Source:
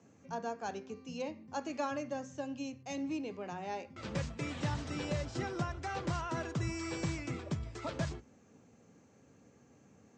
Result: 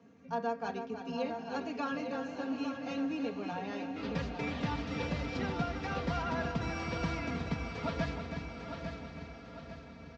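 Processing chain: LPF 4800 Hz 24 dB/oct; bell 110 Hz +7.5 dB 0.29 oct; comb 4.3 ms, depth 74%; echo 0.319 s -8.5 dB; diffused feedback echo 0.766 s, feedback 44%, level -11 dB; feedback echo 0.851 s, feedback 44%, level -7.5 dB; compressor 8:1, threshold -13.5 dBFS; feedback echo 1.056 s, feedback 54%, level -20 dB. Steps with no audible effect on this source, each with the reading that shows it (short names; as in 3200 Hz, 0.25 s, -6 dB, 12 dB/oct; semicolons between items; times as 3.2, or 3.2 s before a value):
compressor, threshold -13.5 dBFS: input peak -21.0 dBFS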